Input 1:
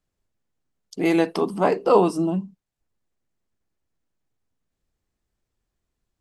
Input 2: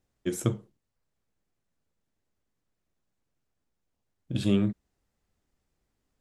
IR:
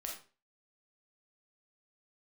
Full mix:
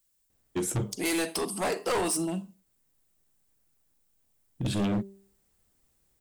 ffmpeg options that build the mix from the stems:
-filter_complex "[0:a]crystalizer=i=8.5:c=0,volume=-10dB,asplit=2[link_01][link_02];[link_02]volume=-10.5dB[link_03];[1:a]bandreject=frequency=196.1:width_type=h:width=4,bandreject=frequency=392.2:width_type=h:width=4,bandreject=frequency=588.3:width_type=h:width=4,bandreject=frequency=784.4:width_type=h:width=4,bandreject=frequency=980.5:width_type=h:width=4,adelay=300,volume=3dB[link_04];[2:a]atrim=start_sample=2205[link_05];[link_03][link_05]afir=irnorm=-1:irlink=0[link_06];[link_01][link_04][link_06]amix=inputs=3:normalize=0,aexciter=amount=1.7:drive=3.3:freq=8300,asoftclip=type=hard:threshold=-24.5dB"

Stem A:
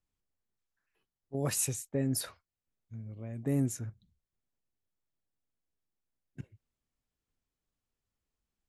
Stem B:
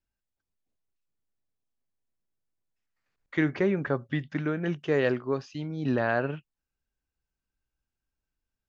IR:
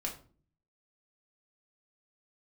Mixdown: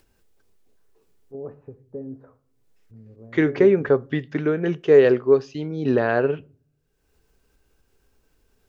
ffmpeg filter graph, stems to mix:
-filter_complex "[0:a]lowpass=frequency=1200:width=0.5412,lowpass=frequency=1200:width=1.3066,acompressor=threshold=-45dB:ratio=1.5,volume=-5dB,asplit=2[link_01][link_02];[link_02]volume=-6dB[link_03];[1:a]volume=2.5dB,asplit=2[link_04][link_05];[link_05]volume=-18.5dB[link_06];[2:a]atrim=start_sample=2205[link_07];[link_03][link_06]amix=inputs=2:normalize=0[link_08];[link_08][link_07]afir=irnorm=-1:irlink=0[link_09];[link_01][link_04][link_09]amix=inputs=3:normalize=0,acompressor=mode=upward:threshold=-48dB:ratio=2.5,equalizer=frequency=420:width=3.1:gain=12"

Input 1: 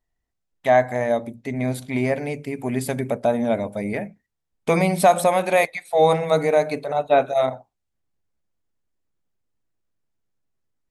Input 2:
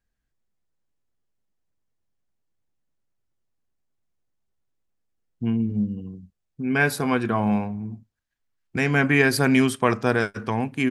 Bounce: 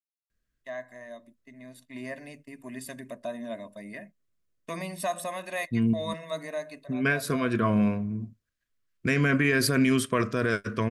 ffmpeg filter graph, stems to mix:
ffmpeg -i stem1.wav -i stem2.wav -filter_complex "[0:a]agate=range=-20dB:threshold=-33dB:ratio=16:detection=peak,highpass=270,aecho=1:1:1.1:0.77,volume=-12dB,afade=type=in:start_time=1.76:duration=0.3:silence=0.421697,afade=type=out:start_time=6.49:duration=0.61:silence=0.421697,asplit=2[link_01][link_02];[1:a]adelay=300,volume=0dB,asplit=3[link_03][link_04][link_05];[link_03]atrim=end=6.14,asetpts=PTS-STARTPTS,afade=type=out:start_time=6.136:duration=0.004:curve=hsin[link_06];[link_04]atrim=start=6.14:end=6.65,asetpts=PTS-STARTPTS,volume=0[link_07];[link_05]atrim=start=6.65,asetpts=PTS-STARTPTS,afade=type=in:duration=0.004:curve=hsin[link_08];[link_06][link_07][link_08]concat=n=3:v=0:a=1[link_09];[link_02]apad=whole_len=493938[link_10];[link_09][link_10]sidechaincompress=threshold=-40dB:ratio=8:attack=22:release=135[link_11];[link_01][link_11]amix=inputs=2:normalize=0,asuperstop=centerf=820:order=4:qfactor=2.6,alimiter=limit=-14.5dB:level=0:latency=1:release=21" out.wav

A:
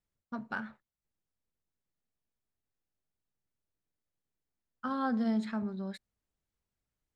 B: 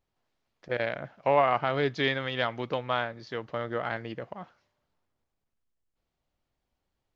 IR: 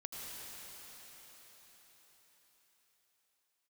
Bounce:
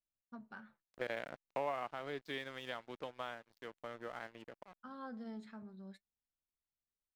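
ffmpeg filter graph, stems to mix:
-filter_complex "[0:a]flanger=delay=2.9:depth=4.3:regen=63:speed=0.46:shape=triangular,volume=-10.5dB[link_01];[1:a]highpass=180,aeval=exprs='sgn(val(0))*max(abs(val(0))-0.00708,0)':channel_layout=same,adelay=300,volume=-3.5dB,afade=type=out:start_time=1.38:duration=0.57:silence=0.398107[link_02];[link_01][link_02]amix=inputs=2:normalize=0,acompressor=threshold=-40dB:ratio=2"

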